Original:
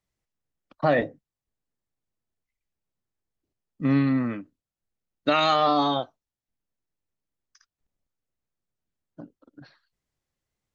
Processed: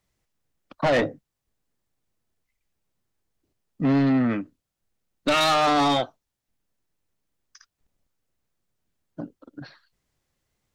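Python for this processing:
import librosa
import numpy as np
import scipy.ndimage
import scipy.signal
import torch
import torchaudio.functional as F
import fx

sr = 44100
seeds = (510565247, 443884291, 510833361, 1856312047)

y = 10.0 ** (-25.0 / 20.0) * np.tanh(x / 10.0 ** (-25.0 / 20.0))
y = y * librosa.db_to_amplitude(8.0)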